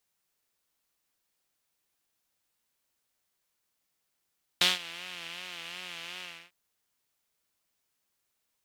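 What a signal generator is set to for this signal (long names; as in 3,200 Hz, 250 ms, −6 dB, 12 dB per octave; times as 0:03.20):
subtractive patch with vibrato F3, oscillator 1 saw, oscillator 2 level −17 dB, noise −9 dB, filter bandpass, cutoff 2,500 Hz, Q 2.7, filter envelope 0.5 octaves, attack 2 ms, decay 0.17 s, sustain −20.5 dB, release 0.30 s, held 1.60 s, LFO 2.7 Hz, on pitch 75 cents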